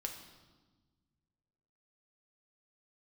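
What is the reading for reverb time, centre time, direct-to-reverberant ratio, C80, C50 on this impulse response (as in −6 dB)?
1.3 s, 26 ms, 2.5 dB, 9.0 dB, 7.0 dB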